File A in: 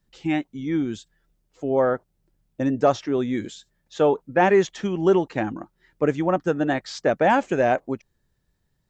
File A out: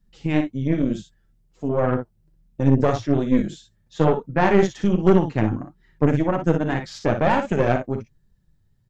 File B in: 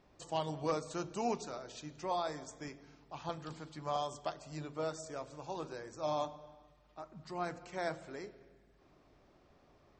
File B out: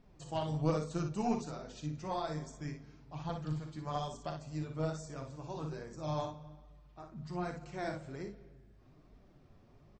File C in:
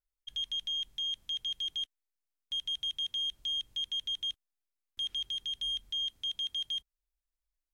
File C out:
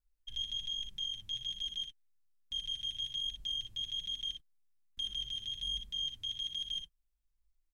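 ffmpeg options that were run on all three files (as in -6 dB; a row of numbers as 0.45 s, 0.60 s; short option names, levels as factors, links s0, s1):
-af "bass=f=250:g=13,treble=f=4000:g=0,flanger=delay=4:depth=5.9:regen=27:speed=1.2:shape=triangular,aecho=1:1:39|59:0.282|0.447,aeval=exprs='0.668*(cos(1*acos(clip(val(0)/0.668,-1,1)))-cos(1*PI/2))+0.0841*(cos(6*acos(clip(val(0)/0.668,-1,1)))-cos(6*PI/2))':c=same"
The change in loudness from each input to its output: +1.5 LU, +1.0 LU, -3.5 LU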